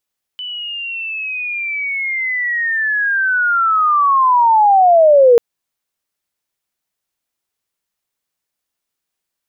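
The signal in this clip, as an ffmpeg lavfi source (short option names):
-f lavfi -i "aevalsrc='pow(10,(-23.5+19*t/4.99)/20)*sin(2*PI*(3000*t-2540*t*t/(2*4.99)))':d=4.99:s=44100"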